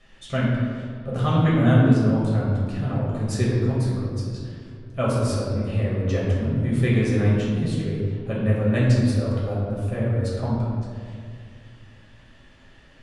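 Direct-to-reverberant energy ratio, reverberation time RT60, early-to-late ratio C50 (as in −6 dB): −7.0 dB, 2.1 s, −1.0 dB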